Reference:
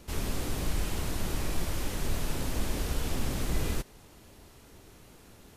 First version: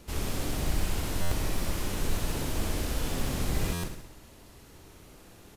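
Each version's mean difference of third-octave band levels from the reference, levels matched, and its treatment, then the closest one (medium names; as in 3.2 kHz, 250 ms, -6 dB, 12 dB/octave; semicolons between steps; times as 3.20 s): 1.5 dB: short-mantissa float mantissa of 4-bit; on a send: feedback delay 65 ms, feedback 57%, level -5 dB; on the sum: buffer glitch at 1.21/3.73 s, samples 512, times 8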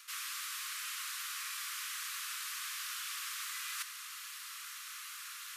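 22.5 dB: steep high-pass 1.1 kHz 96 dB/octave; reverse; compression 8:1, threshold -53 dBFS, peak gain reduction 14.5 dB; reverse; trim +14 dB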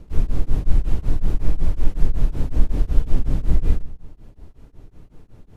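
11.0 dB: tilt EQ -3.5 dB/octave; simulated room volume 3100 m³, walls furnished, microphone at 0.45 m; tremolo of two beating tones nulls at 5.4 Hz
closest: first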